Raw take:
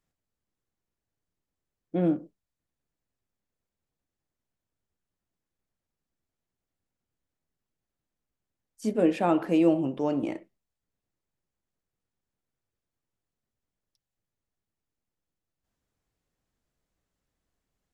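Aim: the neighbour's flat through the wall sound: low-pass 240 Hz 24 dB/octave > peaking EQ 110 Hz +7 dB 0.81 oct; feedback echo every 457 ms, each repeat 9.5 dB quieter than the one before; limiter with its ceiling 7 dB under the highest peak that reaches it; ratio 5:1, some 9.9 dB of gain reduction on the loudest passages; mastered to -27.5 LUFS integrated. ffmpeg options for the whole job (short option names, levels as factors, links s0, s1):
-af "acompressor=threshold=0.0355:ratio=5,alimiter=level_in=1.26:limit=0.0631:level=0:latency=1,volume=0.794,lowpass=f=240:w=0.5412,lowpass=f=240:w=1.3066,equalizer=f=110:t=o:w=0.81:g=7,aecho=1:1:457|914|1371|1828:0.335|0.111|0.0365|0.012,volume=5.96"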